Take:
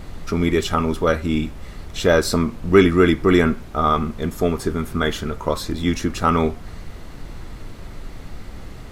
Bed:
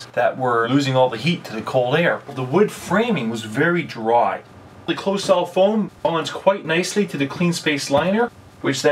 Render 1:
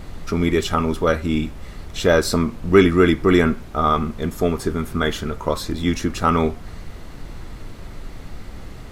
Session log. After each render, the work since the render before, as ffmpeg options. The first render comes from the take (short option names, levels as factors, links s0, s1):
-af anull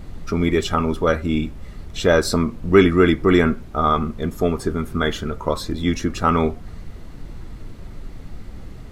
-af "afftdn=nr=6:nf=-37"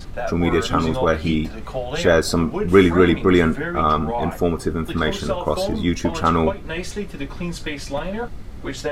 -filter_complex "[1:a]volume=0.355[s0];[0:a][s0]amix=inputs=2:normalize=0"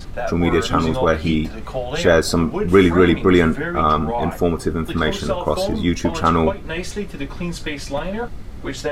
-af "volume=1.19,alimiter=limit=0.794:level=0:latency=1"